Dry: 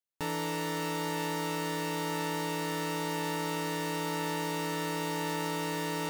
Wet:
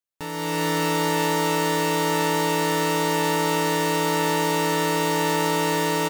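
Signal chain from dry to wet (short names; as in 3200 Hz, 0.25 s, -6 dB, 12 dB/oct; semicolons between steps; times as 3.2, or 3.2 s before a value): AGC gain up to 11 dB; on a send: echo 0.652 s -13.5 dB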